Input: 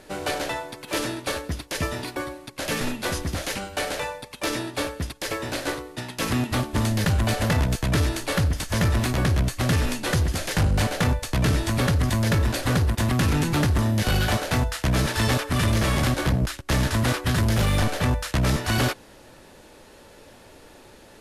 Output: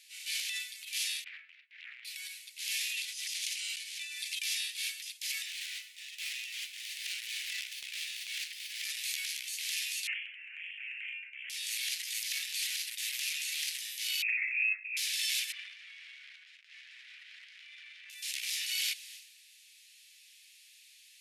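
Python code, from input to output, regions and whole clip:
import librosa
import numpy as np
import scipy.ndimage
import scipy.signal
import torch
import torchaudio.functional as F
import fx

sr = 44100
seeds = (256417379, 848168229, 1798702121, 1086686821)

y = fx.chain(x, sr, fx.lowpass(hz=1700.0, slope=24),
    fx.doppler_dist(depth_ms=0.97), at=(1.24, 2.05))
y = fx.chain(y, sr, fx.lowpass(hz=11000.0, slope=12),
    fx.tilt_shelf(db=-6.0, hz=640.0),
    fx.over_compress(threshold_db=-32.0, ratio=-0.5), at=(2.92, 4.39))
y = fx.chain(y, sr, fx.high_shelf(hz=8100.0, db=-9.5),
    fx.running_max(window=5), at=(5.46, 8.84))
y = fx.chain(y, sr, fx.highpass(hz=1200.0, slope=12),
    fx.freq_invert(carrier_hz=3300), at=(10.07, 11.5))
y = fx.chain(y, sr, fx.freq_invert(carrier_hz=2600),
    fx.high_shelf(hz=2000.0, db=-8.5),
    fx.auto_swell(attack_ms=182.0), at=(14.22, 14.97))
y = fx.chain(y, sr, fx.lowpass(hz=1100.0, slope=12),
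    fx.echo_single(ms=175, db=-4.0), at=(15.52, 18.1))
y = scipy.signal.sosfilt(scipy.signal.butter(8, 2200.0, 'highpass', fs=sr, output='sos'), y)
y = fx.transient(y, sr, attack_db=-6, sustain_db=10)
y = y * librosa.db_to_amplitude(-2.0)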